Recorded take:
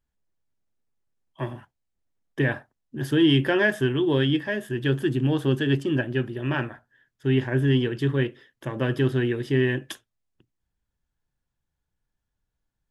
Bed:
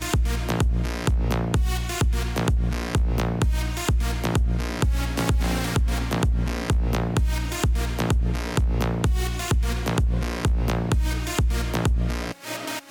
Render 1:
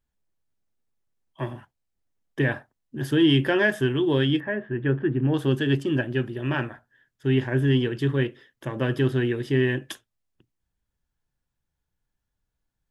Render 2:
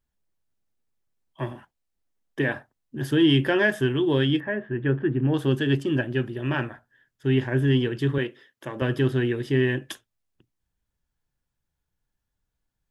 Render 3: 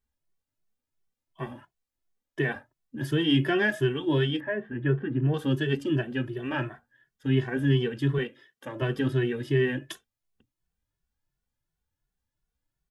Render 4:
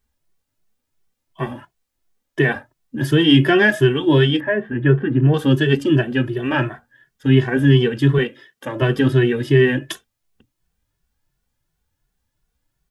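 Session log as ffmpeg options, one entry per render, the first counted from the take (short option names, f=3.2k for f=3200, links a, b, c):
-filter_complex "[0:a]asettb=1/sr,asplit=3[a][b][c];[a]atrim=end=4.404[d];[b]atrim=start=4.4:end=5.34,asetpts=PTS-STARTPTS,afade=t=in:d=0.004:c=qsin,afade=t=out:st=0.936:d=0.004:c=qsin,lowpass=f=2.1k:w=0.5412,lowpass=f=2.1k:w=1.3066[e];[c]atrim=start=5.336[f];[d][e]acrossfade=d=0.004:c1=hsin:c2=qsin[g];[g][f]acrossfade=d=0.004:c1=qsin:c2=hsin"
-filter_complex "[0:a]asettb=1/sr,asplit=3[a][b][c];[a]atrim=end=1.524[d];[b]atrim=start=1.52:end=2.55,asetpts=PTS-STARTPTS,afade=t=in:d=0.004:c=qsin,afade=t=out:st=1.026:d=0.004:c=qsin,equalizer=f=110:t=o:w=0.77:g=-8.5[e];[c]atrim=start=2.546[f];[d][e]acrossfade=d=0.004:c1=hsin:c2=qsin[g];[g][f]acrossfade=d=0.004:c1=qsin:c2=hsin,asettb=1/sr,asplit=3[h][i][j];[h]atrim=end=8.184[k];[i]atrim=start=8.18:end=8.82,asetpts=PTS-STARTPTS,afade=t=in:d=0.004:c=qsin,afade=t=out:st=0.636:d=0.004:c=qsin,highpass=f=290:p=1[l];[j]atrim=start=8.816[m];[k][l]acrossfade=d=0.004:c1=hsin:c2=qsin[n];[n][m]acrossfade=d=0.004:c1=qsin:c2=hsin"
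-filter_complex "[0:a]asplit=2[a][b];[b]adelay=2.2,afreqshift=2.8[c];[a][c]amix=inputs=2:normalize=1"
-af "volume=10.5dB,alimiter=limit=-3dB:level=0:latency=1"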